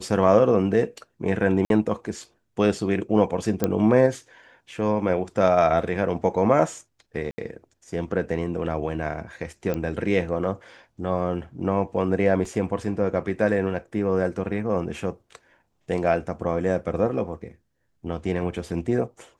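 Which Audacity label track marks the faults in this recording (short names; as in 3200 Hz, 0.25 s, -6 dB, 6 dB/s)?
1.650000	1.700000	gap 52 ms
3.640000	3.640000	pop -8 dBFS
7.310000	7.380000	gap 70 ms
9.740000	9.740000	pop -15 dBFS
12.450000	12.450000	gap 3.2 ms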